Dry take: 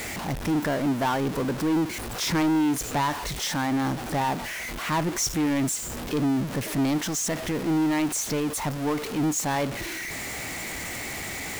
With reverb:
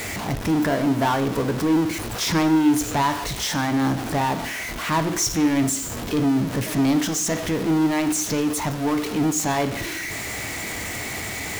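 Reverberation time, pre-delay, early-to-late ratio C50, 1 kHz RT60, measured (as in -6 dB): 0.70 s, 3 ms, 13.0 dB, 0.70 s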